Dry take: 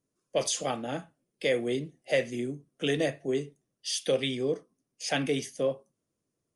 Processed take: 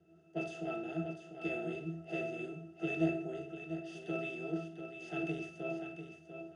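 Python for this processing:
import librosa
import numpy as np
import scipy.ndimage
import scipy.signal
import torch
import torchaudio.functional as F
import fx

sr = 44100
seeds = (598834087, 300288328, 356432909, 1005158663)

y = fx.bin_compress(x, sr, power=0.4)
y = fx.high_shelf(y, sr, hz=3300.0, db=8.0)
y = fx.octave_resonator(y, sr, note='E', decay_s=0.36)
y = fx.echo_feedback(y, sr, ms=695, feedback_pct=16, wet_db=-6.5)
y = fx.band_widen(y, sr, depth_pct=40)
y = F.gain(torch.from_numpy(y), 5.0).numpy()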